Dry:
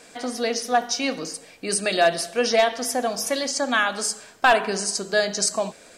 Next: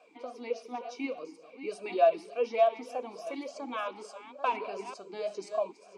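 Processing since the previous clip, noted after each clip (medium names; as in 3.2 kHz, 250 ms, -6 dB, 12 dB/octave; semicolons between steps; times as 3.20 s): chunks repeated in reverse 670 ms, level -11 dB; wow and flutter 18 cents; talking filter a-u 3.4 Hz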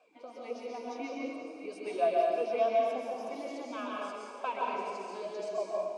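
plate-style reverb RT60 1.7 s, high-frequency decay 0.75×, pre-delay 115 ms, DRR -3 dB; trim -6 dB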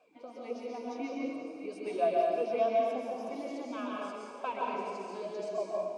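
bass shelf 250 Hz +11 dB; trim -2 dB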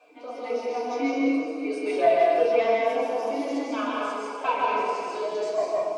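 overdrive pedal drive 12 dB, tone 7.3 kHz, clips at -17.5 dBFS; FDN reverb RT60 0.49 s, low-frequency decay 0.85×, high-frequency decay 0.7×, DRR -4.5 dB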